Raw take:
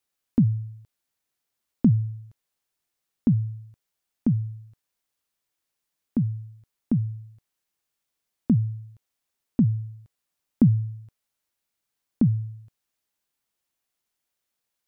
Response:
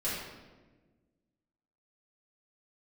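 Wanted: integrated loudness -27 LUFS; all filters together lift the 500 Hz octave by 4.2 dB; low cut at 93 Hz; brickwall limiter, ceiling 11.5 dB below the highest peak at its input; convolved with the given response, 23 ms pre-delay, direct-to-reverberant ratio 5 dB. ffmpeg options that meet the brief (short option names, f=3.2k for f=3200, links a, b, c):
-filter_complex "[0:a]highpass=93,equalizer=f=500:t=o:g=6,alimiter=limit=-18dB:level=0:latency=1,asplit=2[a][b];[1:a]atrim=start_sample=2205,adelay=23[c];[b][c]afir=irnorm=-1:irlink=0,volume=-11.5dB[d];[a][d]amix=inputs=2:normalize=0,volume=3dB"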